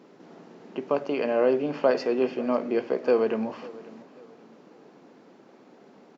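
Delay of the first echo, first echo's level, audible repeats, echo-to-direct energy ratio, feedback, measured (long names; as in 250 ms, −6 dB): 544 ms, −20.0 dB, 2, −19.5 dB, 36%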